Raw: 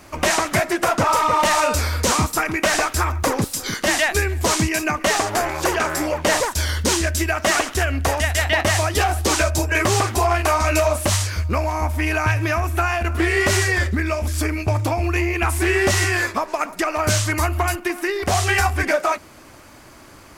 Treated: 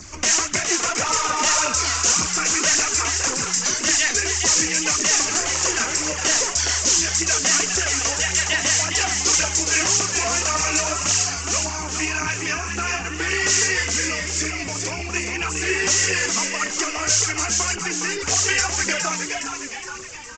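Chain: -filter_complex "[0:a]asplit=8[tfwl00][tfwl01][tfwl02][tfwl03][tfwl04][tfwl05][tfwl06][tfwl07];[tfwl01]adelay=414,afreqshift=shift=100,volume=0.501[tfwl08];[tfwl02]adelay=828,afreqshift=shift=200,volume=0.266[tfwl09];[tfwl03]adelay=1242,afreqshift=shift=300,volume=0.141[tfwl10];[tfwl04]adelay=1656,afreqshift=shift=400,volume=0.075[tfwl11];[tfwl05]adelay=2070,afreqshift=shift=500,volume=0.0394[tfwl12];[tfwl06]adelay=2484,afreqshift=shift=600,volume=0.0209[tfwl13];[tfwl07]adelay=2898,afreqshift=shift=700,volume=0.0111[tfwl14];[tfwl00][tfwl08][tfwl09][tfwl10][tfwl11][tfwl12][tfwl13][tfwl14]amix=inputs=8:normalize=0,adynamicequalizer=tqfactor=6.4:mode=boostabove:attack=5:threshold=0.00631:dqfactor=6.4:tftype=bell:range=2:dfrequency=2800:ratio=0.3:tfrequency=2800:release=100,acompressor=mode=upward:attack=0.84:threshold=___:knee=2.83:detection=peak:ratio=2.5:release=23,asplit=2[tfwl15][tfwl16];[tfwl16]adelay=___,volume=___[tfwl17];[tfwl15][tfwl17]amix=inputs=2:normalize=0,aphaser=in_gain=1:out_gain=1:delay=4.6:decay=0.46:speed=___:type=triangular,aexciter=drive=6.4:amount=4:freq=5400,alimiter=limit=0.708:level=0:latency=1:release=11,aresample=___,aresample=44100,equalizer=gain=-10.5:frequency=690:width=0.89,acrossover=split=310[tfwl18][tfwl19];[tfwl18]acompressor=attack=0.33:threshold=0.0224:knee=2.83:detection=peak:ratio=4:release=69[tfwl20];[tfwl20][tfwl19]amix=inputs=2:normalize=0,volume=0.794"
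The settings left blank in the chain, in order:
0.0251, 13, 0.224, 1.8, 16000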